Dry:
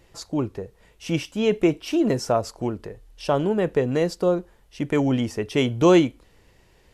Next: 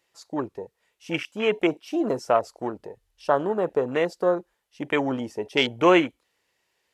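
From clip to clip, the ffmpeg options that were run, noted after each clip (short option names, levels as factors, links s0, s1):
-af "afwtdn=0.0224,highpass=f=1200:p=1,volume=2.37"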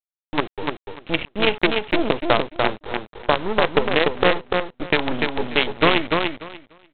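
-af "acompressor=threshold=0.0891:ratio=8,aresample=8000,acrusher=bits=4:dc=4:mix=0:aa=0.000001,aresample=44100,aecho=1:1:294|588|882:0.631|0.107|0.0182,volume=2.37"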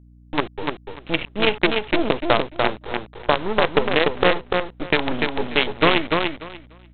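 -af "aeval=exprs='val(0)+0.00447*(sin(2*PI*60*n/s)+sin(2*PI*2*60*n/s)/2+sin(2*PI*3*60*n/s)/3+sin(2*PI*4*60*n/s)/4+sin(2*PI*5*60*n/s)/5)':c=same"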